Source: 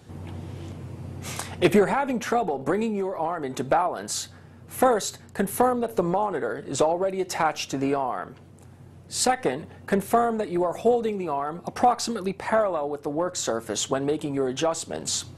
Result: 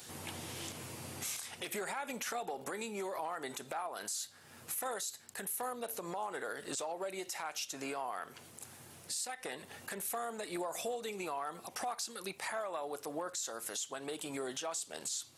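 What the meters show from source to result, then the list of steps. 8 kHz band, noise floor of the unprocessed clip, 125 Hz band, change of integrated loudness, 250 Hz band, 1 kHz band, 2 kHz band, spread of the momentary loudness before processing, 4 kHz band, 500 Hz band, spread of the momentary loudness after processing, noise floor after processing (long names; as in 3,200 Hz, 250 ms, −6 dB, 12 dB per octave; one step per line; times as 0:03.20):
−7.0 dB, −48 dBFS, −19.5 dB, −14.5 dB, −19.0 dB, −15.5 dB, −10.0 dB, 12 LU, −9.5 dB, −17.5 dB, 6 LU, −57 dBFS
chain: spectral tilt +4.5 dB per octave
downward compressor 4 to 1, threshold −37 dBFS, peak gain reduction 23.5 dB
brickwall limiter −28.5 dBFS, peak gain reduction 9.5 dB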